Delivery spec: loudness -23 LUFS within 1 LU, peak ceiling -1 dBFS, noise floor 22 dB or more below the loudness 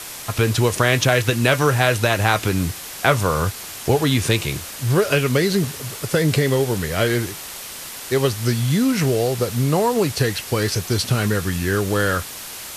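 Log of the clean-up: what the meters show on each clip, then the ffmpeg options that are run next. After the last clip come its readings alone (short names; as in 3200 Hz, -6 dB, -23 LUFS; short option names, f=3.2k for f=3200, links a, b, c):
noise floor -34 dBFS; noise floor target -42 dBFS; loudness -20.0 LUFS; peak -2.5 dBFS; loudness target -23.0 LUFS
-> -af "afftdn=nr=8:nf=-34"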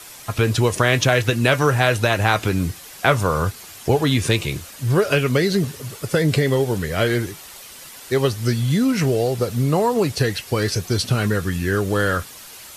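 noise floor -40 dBFS; noise floor target -42 dBFS
-> -af "afftdn=nr=6:nf=-40"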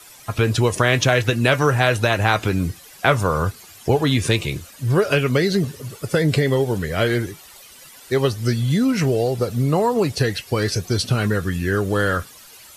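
noise floor -44 dBFS; loudness -20.0 LUFS; peak -3.0 dBFS; loudness target -23.0 LUFS
-> -af "volume=-3dB"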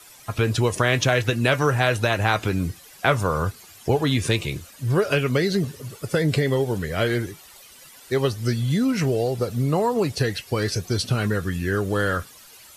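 loudness -23.0 LUFS; peak -6.0 dBFS; noise floor -47 dBFS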